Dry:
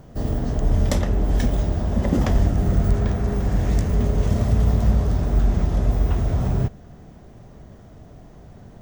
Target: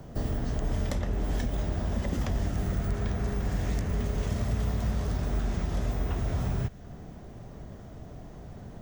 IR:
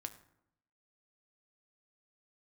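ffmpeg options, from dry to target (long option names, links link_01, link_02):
-filter_complex "[0:a]acrossover=split=130|1300|2600[link_01][link_02][link_03][link_04];[link_01]acompressor=threshold=-29dB:ratio=4[link_05];[link_02]acompressor=threshold=-35dB:ratio=4[link_06];[link_03]acompressor=threshold=-47dB:ratio=4[link_07];[link_04]acompressor=threshold=-46dB:ratio=4[link_08];[link_05][link_06][link_07][link_08]amix=inputs=4:normalize=0"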